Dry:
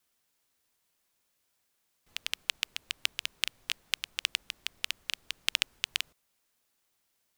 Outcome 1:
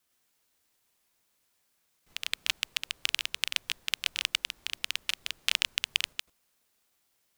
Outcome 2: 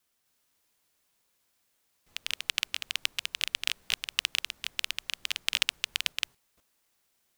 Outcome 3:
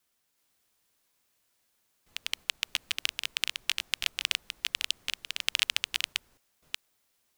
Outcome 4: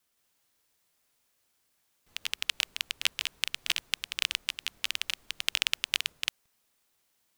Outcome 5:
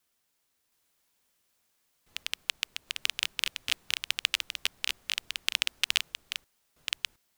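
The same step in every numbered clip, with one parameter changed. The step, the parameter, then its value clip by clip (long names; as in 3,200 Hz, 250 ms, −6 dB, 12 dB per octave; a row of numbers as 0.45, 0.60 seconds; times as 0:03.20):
delay that plays each chunk backwards, delay time: 100, 254, 375, 170, 716 milliseconds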